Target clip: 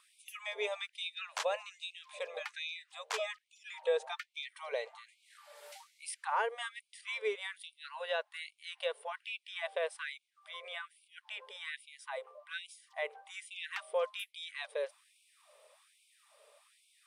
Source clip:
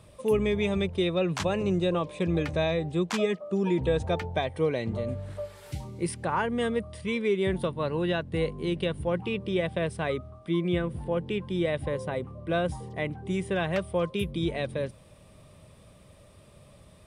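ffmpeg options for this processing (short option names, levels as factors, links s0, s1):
-af "afftfilt=real='re*gte(b*sr/1024,390*pow(2200/390,0.5+0.5*sin(2*PI*1.2*pts/sr)))':imag='im*gte(b*sr/1024,390*pow(2200/390,0.5+0.5*sin(2*PI*1.2*pts/sr)))':win_size=1024:overlap=0.75,volume=0.631"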